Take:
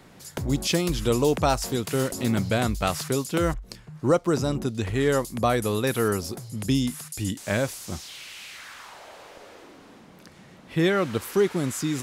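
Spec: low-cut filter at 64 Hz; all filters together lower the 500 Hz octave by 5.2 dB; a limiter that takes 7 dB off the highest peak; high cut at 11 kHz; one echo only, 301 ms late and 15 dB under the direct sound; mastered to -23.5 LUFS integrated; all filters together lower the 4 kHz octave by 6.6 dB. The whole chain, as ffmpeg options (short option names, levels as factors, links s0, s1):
-af "highpass=64,lowpass=11000,equalizer=f=500:t=o:g=-6.5,equalizer=f=4000:t=o:g=-8.5,alimiter=limit=0.119:level=0:latency=1,aecho=1:1:301:0.178,volume=2.24"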